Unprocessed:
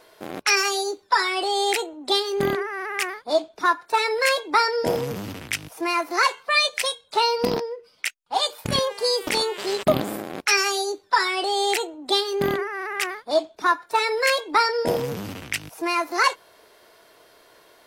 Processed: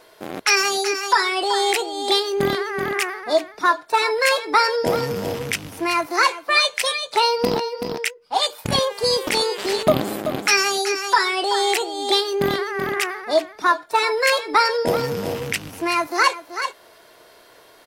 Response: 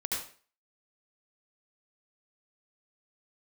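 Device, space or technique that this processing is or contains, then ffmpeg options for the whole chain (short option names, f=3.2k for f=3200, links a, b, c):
ducked delay: -filter_complex "[0:a]asplit=3[a][b][c];[b]adelay=380,volume=-4dB[d];[c]apad=whole_len=804537[e];[d][e]sidechaincompress=threshold=-26dB:ratio=8:attack=16:release=610[f];[a][f]amix=inputs=2:normalize=0,volume=2.5dB"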